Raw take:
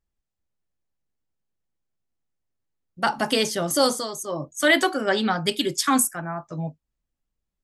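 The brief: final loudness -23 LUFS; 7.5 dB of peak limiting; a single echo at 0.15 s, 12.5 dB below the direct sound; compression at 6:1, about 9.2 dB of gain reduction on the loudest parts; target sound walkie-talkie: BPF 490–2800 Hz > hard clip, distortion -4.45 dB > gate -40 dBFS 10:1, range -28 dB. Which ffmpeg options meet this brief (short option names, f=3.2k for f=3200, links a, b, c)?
-af "acompressor=threshold=-24dB:ratio=6,alimiter=limit=-18.5dB:level=0:latency=1,highpass=490,lowpass=2.8k,aecho=1:1:150:0.237,asoftclip=type=hard:threshold=-37.5dB,agate=range=-28dB:threshold=-40dB:ratio=10,volume=18dB"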